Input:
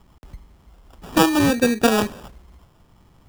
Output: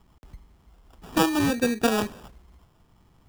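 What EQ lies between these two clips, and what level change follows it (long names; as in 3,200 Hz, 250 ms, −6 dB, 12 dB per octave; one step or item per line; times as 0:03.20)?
notch filter 560 Hz, Q 17
−5.5 dB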